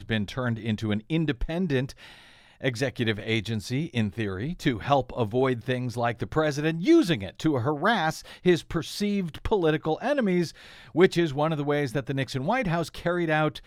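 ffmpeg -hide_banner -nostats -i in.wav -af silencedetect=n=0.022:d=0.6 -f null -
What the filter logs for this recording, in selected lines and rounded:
silence_start: 1.91
silence_end: 2.63 | silence_duration: 0.72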